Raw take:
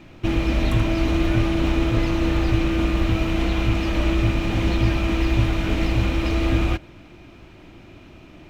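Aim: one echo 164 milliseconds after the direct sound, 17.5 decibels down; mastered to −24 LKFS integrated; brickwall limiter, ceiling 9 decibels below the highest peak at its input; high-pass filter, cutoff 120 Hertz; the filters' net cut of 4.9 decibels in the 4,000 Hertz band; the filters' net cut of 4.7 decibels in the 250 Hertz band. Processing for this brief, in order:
high-pass filter 120 Hz
parametric band 250 Hz −7 dB
parametric band 4,000 Hz −7 dB
brickwall limiter −21.5 dBFS
single-tap delay 164 ms −17.5 dB
level +6 dB

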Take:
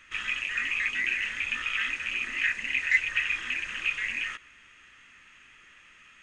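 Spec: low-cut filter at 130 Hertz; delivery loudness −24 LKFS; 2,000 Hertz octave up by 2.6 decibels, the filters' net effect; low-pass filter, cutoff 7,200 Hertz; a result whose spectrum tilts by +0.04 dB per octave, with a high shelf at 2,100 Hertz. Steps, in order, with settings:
high-pass filter 130 Hz
low-pass filter 7,200 Hz
parametric band 2,000 Hz +6 dB
high-shelf EQ 2,100 Hz −5 dB
level +1.5 dB

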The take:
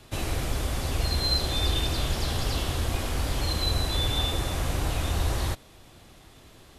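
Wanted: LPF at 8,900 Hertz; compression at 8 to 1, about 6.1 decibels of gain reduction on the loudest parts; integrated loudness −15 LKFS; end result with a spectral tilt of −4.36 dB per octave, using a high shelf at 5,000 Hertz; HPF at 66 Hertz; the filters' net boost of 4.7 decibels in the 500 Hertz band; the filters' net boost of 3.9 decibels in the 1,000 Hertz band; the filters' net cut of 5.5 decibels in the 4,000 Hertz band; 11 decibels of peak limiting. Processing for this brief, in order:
high-pass filter 66 Hz
low-pass filter 8,900 Hz
parametric band 500 Hz +5 dB
parametric band 1,000 Hz +3.5 dB
parametric band 4,000 Hz −9 dB
high-shelf EQ 5,000 Hz +6.5 dB
downward compressor 8 to 1, threshold −30 dBFS
level +27 dB
brickwall limiter −5.5 dBFS

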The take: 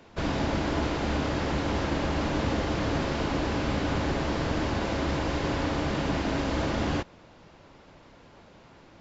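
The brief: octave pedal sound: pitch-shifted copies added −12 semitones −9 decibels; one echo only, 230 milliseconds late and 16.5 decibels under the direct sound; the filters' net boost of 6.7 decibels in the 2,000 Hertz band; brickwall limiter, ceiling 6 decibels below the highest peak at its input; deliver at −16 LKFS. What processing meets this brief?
parametric band 2,000 Hz +8.5 dB
brickwall limiter −20.5 dBFS
single-tap delay 230 ms −16.5 dB
pitch-shifted copies added −12 semitones −9 dB
level +13 dB

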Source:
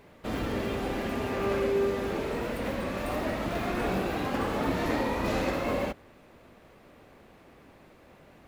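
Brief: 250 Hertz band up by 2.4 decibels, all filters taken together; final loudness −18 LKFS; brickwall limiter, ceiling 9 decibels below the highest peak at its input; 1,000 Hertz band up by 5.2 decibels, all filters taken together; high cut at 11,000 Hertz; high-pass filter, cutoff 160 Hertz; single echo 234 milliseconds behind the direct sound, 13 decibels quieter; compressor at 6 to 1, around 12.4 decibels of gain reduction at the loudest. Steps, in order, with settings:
high-pass filter 160 Hz
low-pass filter 11,000 Hz
parametric band 250 Hz +3.5 dB
parametric band 1,000 Hz +6.5 dB
downward compressor 6 to 1, threshold −35 dBFS
brickwall limiter −33 dBFS
single-tap delay 234 ms −13 dB
level +24.5 dB

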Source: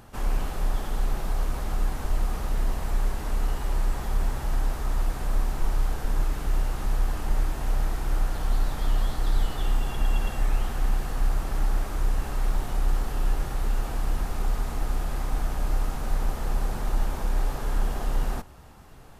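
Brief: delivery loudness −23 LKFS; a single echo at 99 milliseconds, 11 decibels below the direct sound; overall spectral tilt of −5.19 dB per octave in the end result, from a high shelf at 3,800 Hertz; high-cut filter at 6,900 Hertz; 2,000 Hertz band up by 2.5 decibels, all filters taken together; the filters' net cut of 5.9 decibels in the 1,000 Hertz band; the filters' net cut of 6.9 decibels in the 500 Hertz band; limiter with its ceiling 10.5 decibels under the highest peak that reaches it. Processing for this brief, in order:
low-pass filter 6,900 Hz
parametric band 500 Hz −7.5 dB
parametric band 1,000 Hz −7 dB
parametric band 2,000 Hz +8 dB
high-shelf EQ 3,800 Hz −7.5 dB
brickwall limiter −23.5 dBFS
single-tap delay 99 ms −11 dB
level +12 dB

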